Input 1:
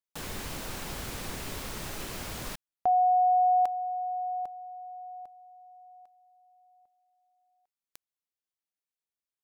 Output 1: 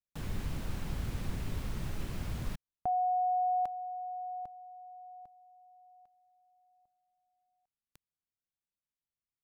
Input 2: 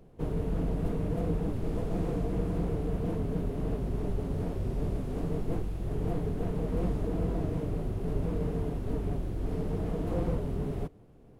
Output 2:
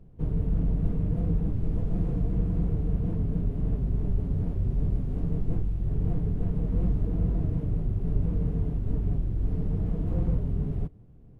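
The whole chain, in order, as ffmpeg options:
-af "bass=f=250:g=14,treble=f=4000:g=-5,volume=0.422"

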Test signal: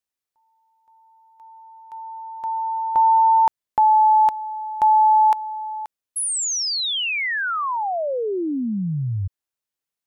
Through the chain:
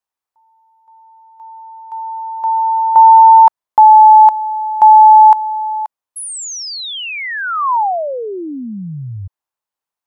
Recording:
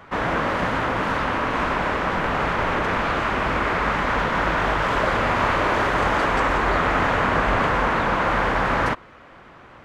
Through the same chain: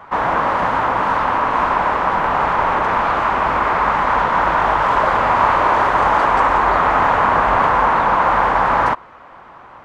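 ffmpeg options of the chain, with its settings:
-af "equalizer=f=930:t=o:w=1.2:g=12.5,volume=0.794"

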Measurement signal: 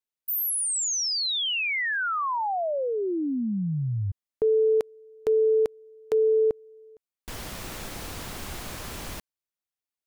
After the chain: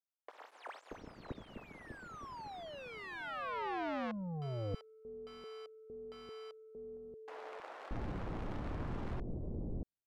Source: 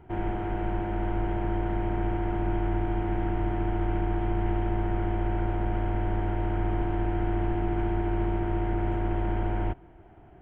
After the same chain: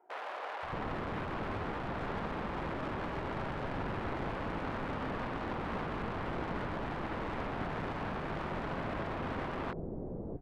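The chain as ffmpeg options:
-filter_complex "[0:a]aeval=exprs='(mod(29.9*val(0)+1,2)-1)/29.9':c=same,adynamicsmooth=sensitivity=1.5:basefreq=670,acrossover=split=540[s0][s1];[s0]adelay=630[s2];[s2][s1]amix=inputs=2:normalize=0,volume=1.33"

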